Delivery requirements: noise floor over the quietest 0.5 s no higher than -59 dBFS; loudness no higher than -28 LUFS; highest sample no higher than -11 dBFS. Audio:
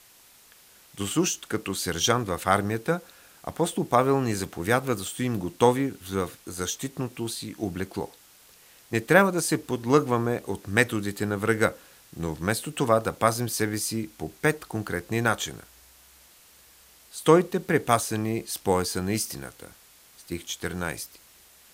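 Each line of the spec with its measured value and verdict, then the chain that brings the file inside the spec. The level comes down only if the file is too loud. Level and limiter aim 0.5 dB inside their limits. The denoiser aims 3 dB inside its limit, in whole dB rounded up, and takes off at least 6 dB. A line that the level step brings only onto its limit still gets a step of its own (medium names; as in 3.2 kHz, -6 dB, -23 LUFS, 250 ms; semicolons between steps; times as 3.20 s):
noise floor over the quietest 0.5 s -55 dBFS: fail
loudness -26.0 LUFS: fail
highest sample -3.5 dBFS: fail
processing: noise reduction 6 dB, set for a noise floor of -55 dBFS; trim -2.5 dB; peak limiter -11.5 dBFS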